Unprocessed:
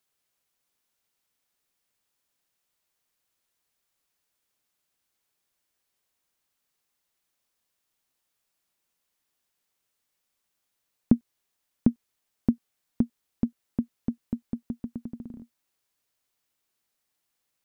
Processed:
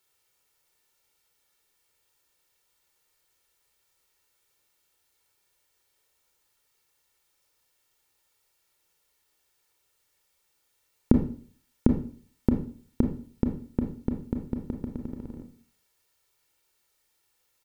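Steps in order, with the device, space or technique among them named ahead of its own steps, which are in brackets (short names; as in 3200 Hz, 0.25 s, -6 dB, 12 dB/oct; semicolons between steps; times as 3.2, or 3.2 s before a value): microphone above a desk (comb 2.2 ms, depth 57%; reverb RT60 0.45 s, pre-delay 25 ms, DRR 3.5 dB); gain +4.5 dB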